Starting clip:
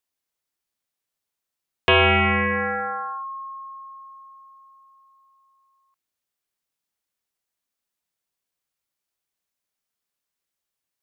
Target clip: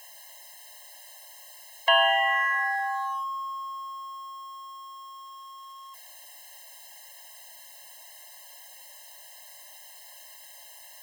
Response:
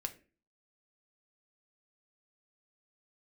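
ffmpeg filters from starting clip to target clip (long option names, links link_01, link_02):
-af "aeval=exprs='val(0)+0.5*0.0126*sgn(val(0))':channel_layout=same,afftfilt=real='re*eq(mod(floor(b*sr/1024/540),2),1)':imag='im*eq(mod(floor(b*sr/1024/540),2),1)':win_size=1024:overlap=0.75"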